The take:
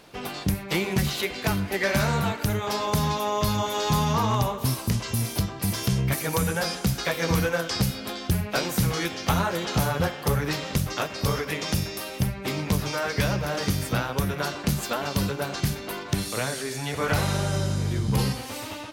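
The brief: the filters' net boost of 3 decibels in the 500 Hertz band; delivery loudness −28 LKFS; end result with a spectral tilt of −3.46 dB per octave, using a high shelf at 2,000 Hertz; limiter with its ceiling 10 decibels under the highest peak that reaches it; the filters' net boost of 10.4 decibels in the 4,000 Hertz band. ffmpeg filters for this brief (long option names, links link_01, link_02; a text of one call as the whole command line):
ffmpeg -i in.wav -af "equalizer=frequency=500:width_type=o:gain=3,highshelf=frequency=2000:gain=8,equalizer=frequency=4000:width_type=o:gain=5,volume=-4dB,alimiter=limit=-18.5dB:level=0:latency=1" out.wav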